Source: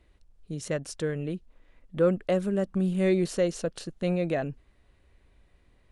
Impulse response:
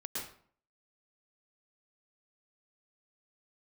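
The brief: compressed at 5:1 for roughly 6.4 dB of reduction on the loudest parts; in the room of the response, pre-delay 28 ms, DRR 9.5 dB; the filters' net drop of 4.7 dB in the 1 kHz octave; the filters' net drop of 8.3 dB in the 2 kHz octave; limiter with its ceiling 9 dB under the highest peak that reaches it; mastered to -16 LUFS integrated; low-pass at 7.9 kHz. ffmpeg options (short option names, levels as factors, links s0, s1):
-filter_complex "[0:a]lowpass=7900,equalizer=f=1000:t=o:g=-6,equalizer=f=2000:t=o:g=-8.5,acompressor=threshold=0.0447:ratio=5,alimiter=level_in=1.58:limit=0.0631:level=0:latency=1,volume=0.631,asplit=2[s0][s1];[1:a]atrim=start_sample=2205,adelay=28[s2];[s1][s2]afir=irnorm=-1:irlink=0,volume=0.299[s3];[s0][s3]amix=inputs=2:normalize=0,volume=11.2"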